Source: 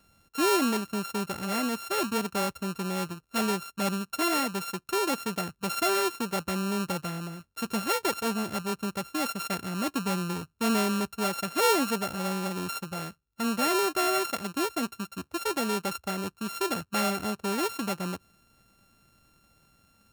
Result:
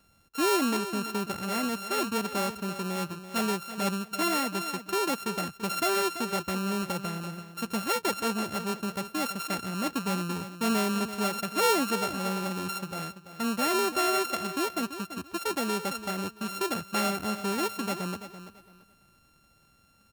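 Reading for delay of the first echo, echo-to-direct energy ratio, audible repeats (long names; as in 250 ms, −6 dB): 336 ms, −11.5 dB, 2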